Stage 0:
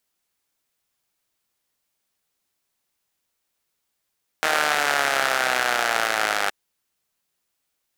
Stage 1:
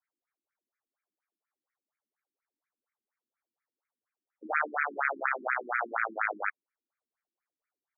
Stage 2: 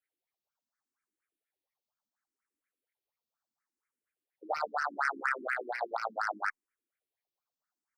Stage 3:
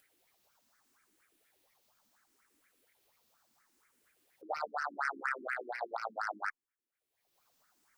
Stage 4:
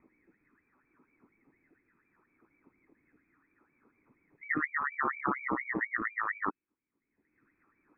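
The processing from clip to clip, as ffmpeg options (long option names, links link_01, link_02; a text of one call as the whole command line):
ffmpeg -i in.wav -af "afftfilt=real='re*between(b*sr/1024,250*pow(1800/250,0.5+0.5*sin(2*PI*4.2*pts/sr))/1.41,250*pow(1800/250,0.5+0.5*sin(2*PI*4.2*pts/sr))*1.41)':imag='im*between(b*sr/1024,250*pow(1800/250,0.5+0.5*sin(2*PI*4.2*pts/sr))/1.41,250*pow(1800/250,0.5+0.5*sin(2*PI*4.2*pts/sr))*1.41)':win_size=1024:overlap=0.75,volume=-3dB" out.wav
ffmpeg -i in.wav -filter_complex "[0:a]acrossover=split=1100[link_01][link_02];[link_02]asoftclip=type=tanh:threshold=-25.5dB[link_03];[link_01][link_03]amix=inputs=2:normalize=0,asplit=2[link_04][link_05];[link_05]afreqshift=0.72[link_06];[link_04][link_06]amix=inputs=2:normalize=1,volume=2dB" out.wav
ffmpeg -i in.wav -af "acompressor=mode=upward:threshold=-50dB:ratio=2.5,volume=-4dB" out.wav
ffmpeg -i in.wav -af "lowpass=frequency=2200:width_type=q:width=0.5098,lowpass=frequency=2200:width_type=q:width=0.6013,lowpass=frequency=2200:width_type=q:width=0.9,lowpass=frequency=2200:width_type=q:width=2.563,afreqshift=-2600,lowshelf=frequency=440:width_type=q:width=3:gain=13,volume=5.5dB" out.wav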